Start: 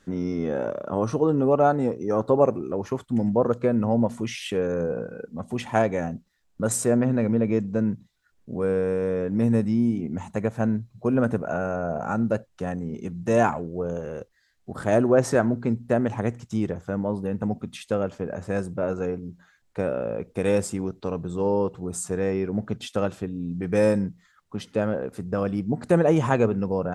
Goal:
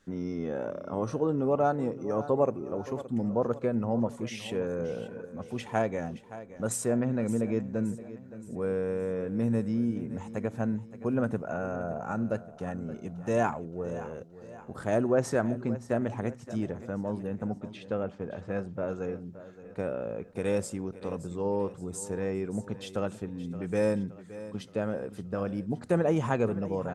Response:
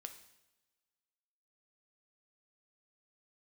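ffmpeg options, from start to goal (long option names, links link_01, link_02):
-filter_complex "[0:a]asettb=1/sr,asplit=3[link_01][link_02][link_03];[link_01]atrim=end=17.584[link_04];[link_02]atrim=start=17.58:end=18.74,asetpts=PTS-STARTPTS,afade=type=in:duration=0.004:curve=qsin,afade=type=out:start_time=1.156:duration=0.004:curve=qsin,lowpass=3800[link_05];[link_03]atrim=start=18.736[link_06];[link_04][link_05]acrossfade=duration=0.004:curve1=hsin:curve2=qsin[link_07];[link_07][link_06]acrossfade=duration=0.004:curve1=qsin:curve2=hsin,aecho=1:1:571|1142|1713|2284|2855:0.178|0.0871|0.0427|0.0209|0.0103,volume=-6.5dB"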